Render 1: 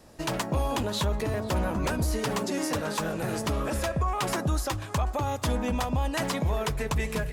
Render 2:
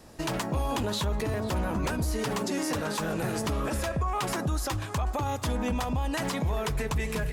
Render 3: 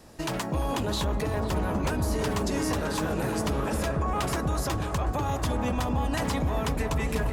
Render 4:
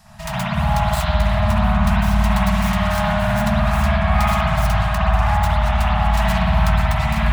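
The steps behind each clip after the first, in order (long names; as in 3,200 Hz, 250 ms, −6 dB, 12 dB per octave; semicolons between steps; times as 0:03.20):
parametric band 580 Hz −3 dB 0.31 octaves; brickwall limiter −24 dBFS, peak gain reduction 5.5 dB; level +2.5 dB
delay with a low-pass on its return 345 ms, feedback 77%, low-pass 1,300 Hz, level −6 dB
phase distortion by the signal itself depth 0.25 ms; spring reverb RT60 2.1 s, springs 55 ms, chirp 65 ms, DRR −8.5 dB; brick-wall band-stop 220–610 Hz; level +3 dB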